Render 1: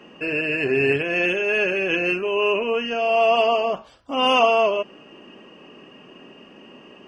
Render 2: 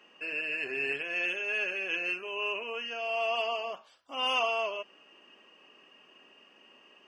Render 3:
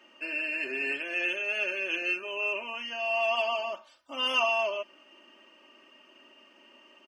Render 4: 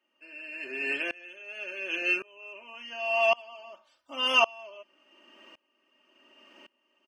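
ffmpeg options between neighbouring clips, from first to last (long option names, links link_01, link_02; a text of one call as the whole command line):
ffmpeg -i in.wav -af "highpass=frequency=1400:poles=1,volume=-7dB" out.wav
ffmpeg -i in.wav -af "aecho=1:1:3.3:0.83" out.wav
ffmpeg -i in.wav -af "aeval=exprs='val(0)*pow(10,-27*if(lt(mod(-0.9*n/s,1),2*abs(-0.9)/1000),1-mod(-0.9*n/s,1)/(2*abs(-0.9)/1000),(mod(-0.9*n/s,1)-2*abs(-0.9)/1000)/(1-2*abs(-0.9)/1000))/20)':channel_layout=same,volume=6dB" out.wav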